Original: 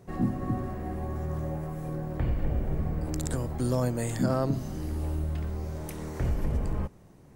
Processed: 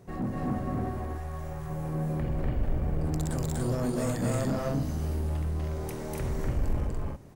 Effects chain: 0.89–1.7 bell 250 Hz -14.5 dB 2.2 oct; soft clip -26.5 dBFS, distortion -11 dB; loudspeakers at several distances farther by 84 m -1 dB, 99 m -3 dB

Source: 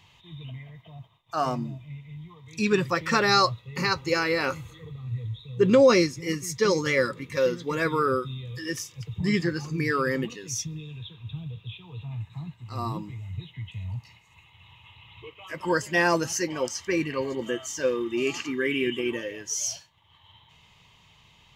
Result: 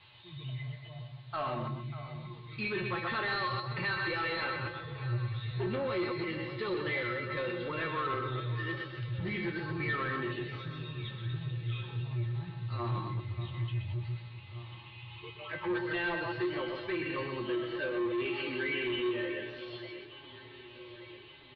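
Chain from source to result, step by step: reverse delay 0.12 s, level -7 dB; compressor 2.5:1, threshold -27 dBFS, peak gain reduction 10.5 dB; on a send: echo 0.127 s -8 dB; on the sum: added noise violet -44 dBFS; low shelf 460 Hz -4.5 dB; resonator 120 Hz, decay 0.26 s, harmonics odd, mix 90%; sample leveller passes 3; steep low-pass 4200 Hz 96 dB/oct; echo with dull and thin repeats by turns 0.59 s, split 1600 Hz, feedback 73%, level -13 dB

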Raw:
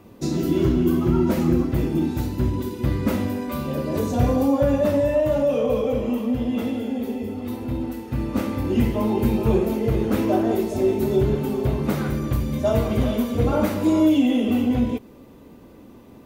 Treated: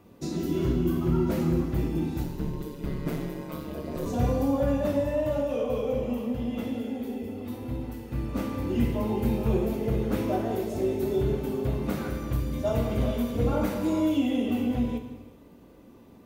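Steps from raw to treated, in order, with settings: 2.23–4.06 ring modulator 71 Hz; non-linear reverb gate 0.45 s falling, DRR 6 dB; gain -7 dB

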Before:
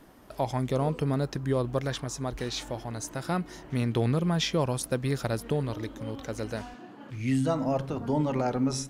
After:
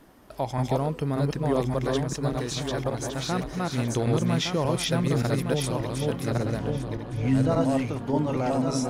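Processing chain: regenerating reverse delay 0.581 s, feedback 50%, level -0.5 dB; 6.3–7.61 tilt -1.5 dB/oct

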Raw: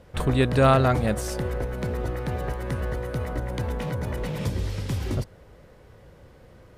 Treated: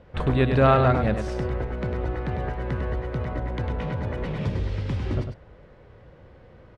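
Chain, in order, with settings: LPF 3200 Hz 12 dB/oct; on a send: echo 0.1 s -7 dB

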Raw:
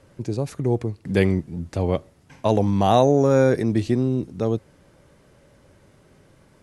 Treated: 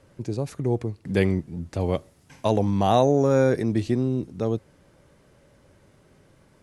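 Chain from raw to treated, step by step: 1.79–2.48 high shelf 5400 Hz -> 3900 Hz +8 dB; gain -2.5 dB

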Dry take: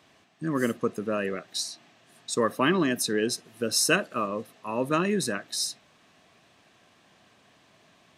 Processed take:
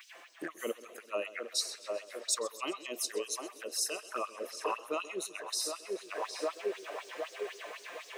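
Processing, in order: band shelf 6500 Hz -12 dB 2.3 oct; in parallel at -3 dB: limiter -19.5 dBFS, peak gain reduction 10 dB; on the sum: envelope flanger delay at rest 6.2 ms, full sweep at -21 dBFS; on a send: narrowing echo 0.761 s, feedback 46%, band-pass 570 Hz, level -8 dB; on the sum: compressor 2:1, threshold -41 dBFS, peak gain reduction 12.5 dB; tilt +4 dB/oct; vocal rider within 10 dB 0.5 s; LFO high-pass sine 4 Hz 360–5700 Hz; warbling echo 0.13 s, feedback 68%, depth 107 cents, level -17.5 dB

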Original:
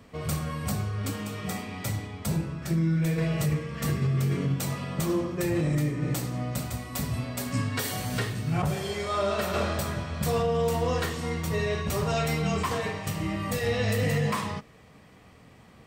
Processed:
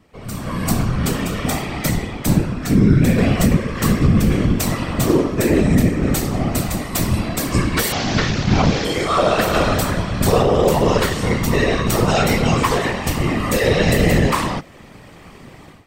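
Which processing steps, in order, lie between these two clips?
7.92–8.85 delta modulation 32 kbps, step -28.5 dBFS; AGC gain up to 16 dB; whisperiser; gain -3 dB

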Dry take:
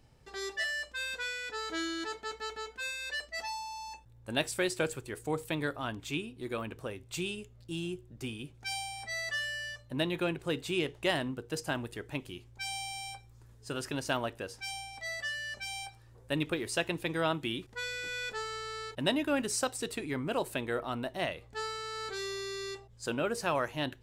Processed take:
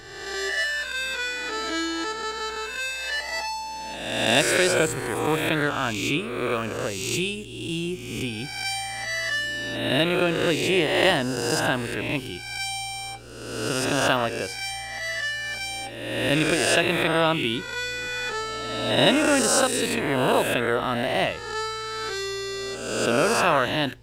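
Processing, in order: spectral swells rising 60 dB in 1.34 s; gain +7.5 dB

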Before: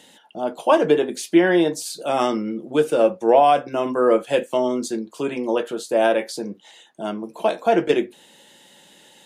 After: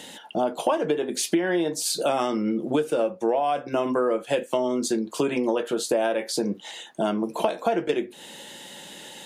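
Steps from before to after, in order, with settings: compressor 10:1, threshold -29 dBFS, peak gain reduction 19.5 dB; gain +8.5 dB

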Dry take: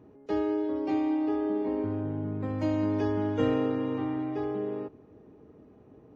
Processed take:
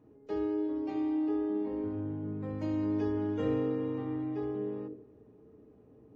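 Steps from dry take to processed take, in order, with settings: on a send: resonant low shelf 610 Hz +9 dB, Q 3 + reverb RT60 0.50 s, pre-delay 4 ms, DRR 7.5 dB; on the sum: gain -8 dB

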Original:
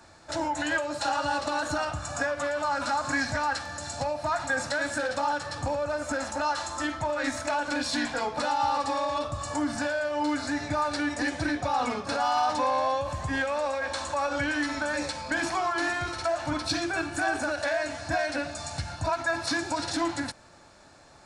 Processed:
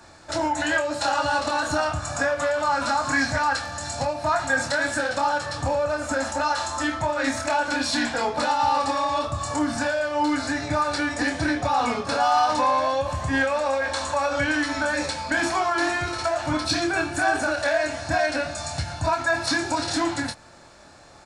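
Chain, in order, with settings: doubler 26 ms -6 dB; gain +4 dB

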